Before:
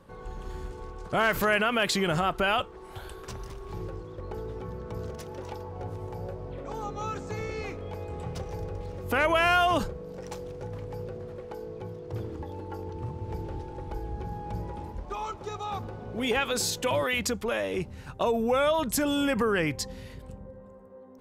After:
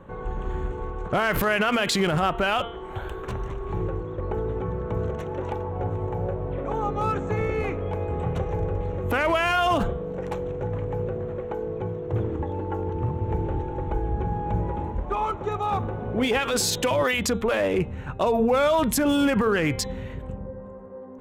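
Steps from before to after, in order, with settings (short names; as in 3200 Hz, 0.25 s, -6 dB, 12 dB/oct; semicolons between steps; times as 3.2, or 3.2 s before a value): Wiener smoothing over 9 samples; de-hum 232.4 Hz, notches 17; limiter -23 dBFS, peak gain reduction 10.5 dB; gain +9 dB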